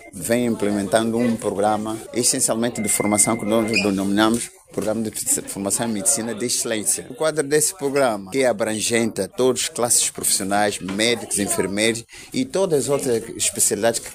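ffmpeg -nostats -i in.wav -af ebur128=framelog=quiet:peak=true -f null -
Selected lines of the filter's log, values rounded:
Integrated loudness:
  I:         -20.0 LUFS
  Threshold: -30.0 LUFS
Loudness range:
  LRA:         1.6 LU
  Threshold: -39.9 LUFS
  LRA low:   -20.8 LUFS
  LRA high:  -19.2 LUFS
True peak:
  Peak:       -1.6 dBFS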